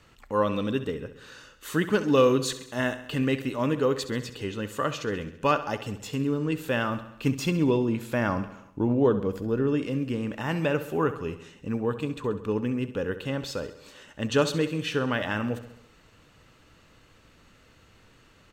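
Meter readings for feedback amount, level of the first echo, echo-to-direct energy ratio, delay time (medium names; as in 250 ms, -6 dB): 59%, -13.5 dB, -11.5 dB, 67 ms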